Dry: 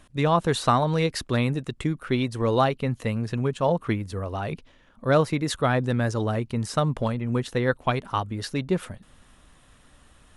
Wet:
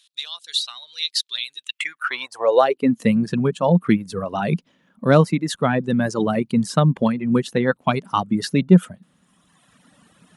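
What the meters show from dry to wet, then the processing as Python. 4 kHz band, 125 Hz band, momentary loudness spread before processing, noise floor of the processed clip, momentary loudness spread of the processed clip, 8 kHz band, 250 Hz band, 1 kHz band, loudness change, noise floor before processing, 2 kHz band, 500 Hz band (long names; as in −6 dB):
+8.0 dB, +3.0 dB, 8 LU, −66 dBFS, 11 LU, +3.5 dB, +7.5 dB, +2.0 dB, +5.0 dB, −57 dBFS, +3.5 dB, +4.0 dB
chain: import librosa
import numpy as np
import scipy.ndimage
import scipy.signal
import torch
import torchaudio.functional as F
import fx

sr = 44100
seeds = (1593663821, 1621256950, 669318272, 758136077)

y = fx.dereverb_blind(x, sr, rt60_s=1.6)
y = fx.rider(y, sr, range_db=4, speed_s=0.5)
y = fx.filter_sweep_highpass(y, sr, from_hz=3800.0, to_hz=180.0, start_s=1.56, end_s=3.08, q=3.9)
y = F.gain(torch.from_numpy(y), 3.5).numpy()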